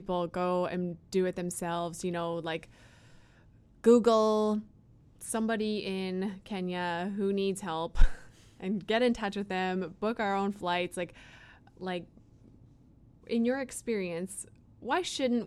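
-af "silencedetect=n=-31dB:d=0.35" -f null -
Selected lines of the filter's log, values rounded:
silence_start: 2.56
silence_end: 3.84 | silence_duration: 1.28
silence_start: 4.59
silence_end: 5.29 | silence_duration: 0.70
silence_start: 8.13
silence_end: 8.63 | silence_duration: 0.50
silence_start: 11.04
silence_end: 11.83 | silence_duration: 0.79
silence_start: 11.98
silence_end: 13.30 | silence_duration: 1.31
silence_start: 14.41
silence_end: 14.88 | silence_duration: 0.46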